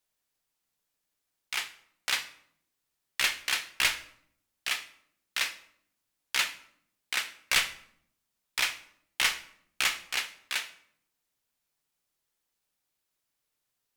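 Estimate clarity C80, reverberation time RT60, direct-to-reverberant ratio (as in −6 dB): 17.0 dB, 0.70 s, 9.5 dB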